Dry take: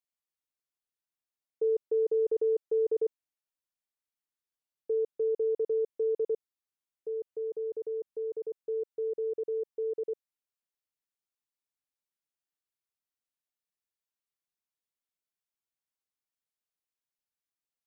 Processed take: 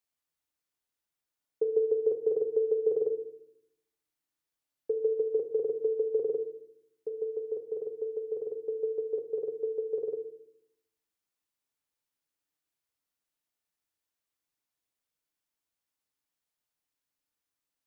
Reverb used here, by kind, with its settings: FDN reverb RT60 0.75 s, low-frequency decay 1.55×, high-frequency decay 0.25×, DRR 7 dB; trim +4 dB

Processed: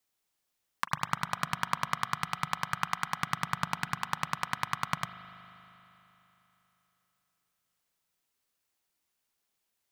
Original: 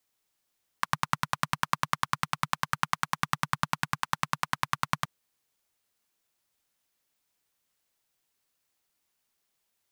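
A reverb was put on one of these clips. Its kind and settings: spring tank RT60 3.5 s, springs 39 ms, chirp 55 ms, DRR 9.5 dB; trim -3 dB

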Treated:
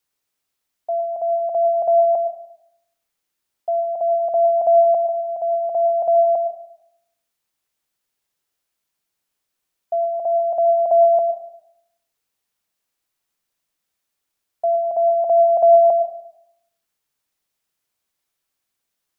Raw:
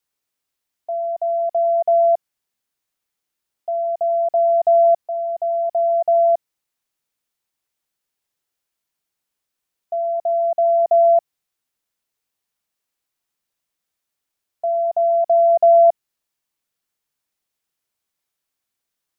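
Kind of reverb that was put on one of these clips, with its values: algorithmic reverb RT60 0.78 s, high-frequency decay 0.75×, pre-delay 65 ms, DRR 10 dB; trim +2 dB

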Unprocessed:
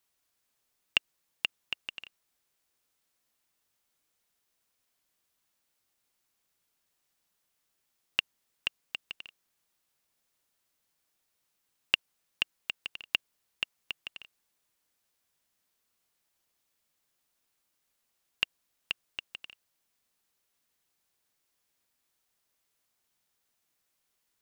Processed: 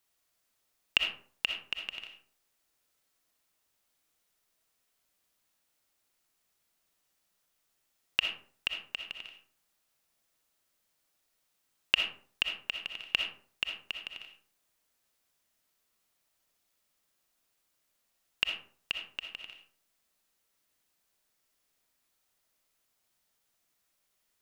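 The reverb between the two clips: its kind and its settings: algorithmic reverb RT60 0.5 s, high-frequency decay 0.5×, pre-delay 20 ms, DRR 3 dB

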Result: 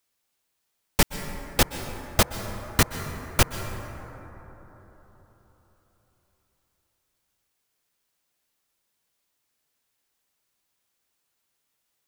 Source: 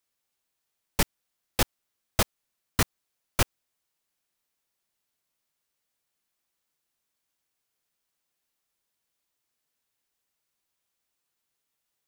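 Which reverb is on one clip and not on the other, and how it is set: plate-style reverb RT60 4.2 s, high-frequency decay 0.3×, pre-delay 110 ms, DRR 9 dB; trim +4.5 dB

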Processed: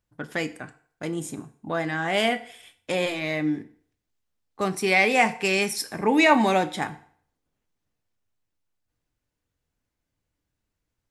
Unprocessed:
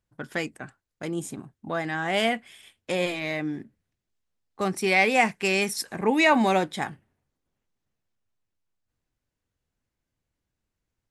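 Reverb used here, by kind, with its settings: FDN reverb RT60 0.55 s, low-frequency decay 0.75×, high-frequency decay 0.9×, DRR 10 dB; trim +1 dB

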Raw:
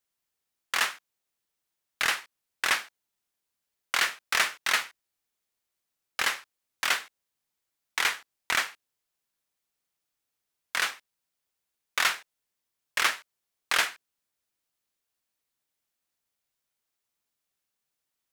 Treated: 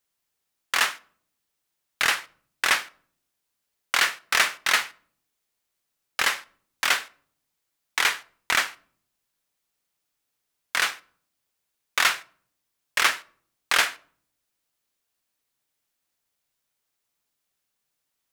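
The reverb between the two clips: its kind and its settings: simulated room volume 760 m³, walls furnished, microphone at 0.32 m; trim +4 dB

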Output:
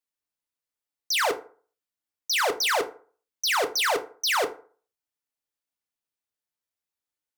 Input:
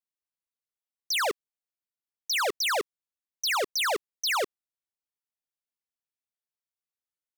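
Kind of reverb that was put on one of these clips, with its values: FDN reverb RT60 0.43 s, low-frequency decay 0.9×, high-frequency decay 0.55×, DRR 6 dB; trim +2 dB

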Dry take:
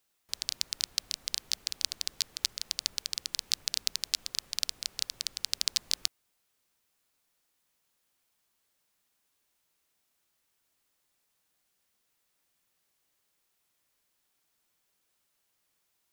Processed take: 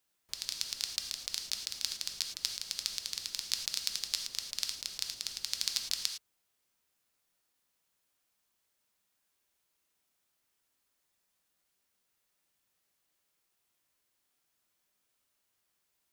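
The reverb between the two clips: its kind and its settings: gated-style reverb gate 130 ms flat, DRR 4 dB; trim -4 dB

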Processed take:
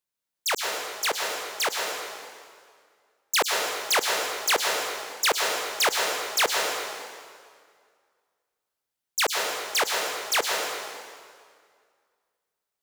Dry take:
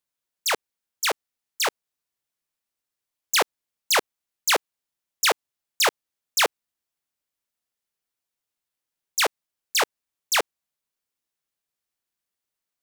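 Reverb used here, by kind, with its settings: plate-style reverb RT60 2 s, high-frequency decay 0.85×, pre-delay 95 ms, DRR 0.5 dB; trim -2.5 dB

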